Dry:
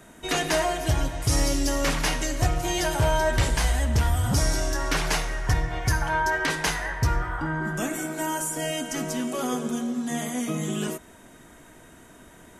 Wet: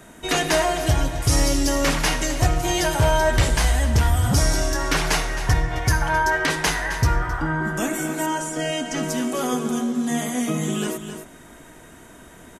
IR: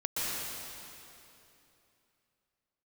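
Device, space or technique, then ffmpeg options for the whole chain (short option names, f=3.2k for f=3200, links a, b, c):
ducked delay: -filter_complex "[0:a]asplit=3[a][b][c];[b]adelay=264,volume=-8.5dB[d];[c]apad=whole_len=566899[e];[d][e]sidechaincompress=threshold=-28dB:ratio=8:attack=29:release=555[f];[a][f]amix=inputs=2:normalize=0,asettb=1/sr,asplit=3[g][h][i];[g]atrim=end=8.264[j];[h]atrim=start=8.26:end=9.03,asetpts=PTS-STARTPTS,afade=t=in:d=0.004:c=qsin,afade=t=out:st=0.766:d=0.004:c=qsin,lowpass=6.4k[k];[i]atrim=start=9.026[l];[j][k]acrossfade=d=0.004:c1=hsin:c2=qsin[m];[m][l]acrossfade=d=0.004:c1=qsin:c2=hsin,volume=4dB"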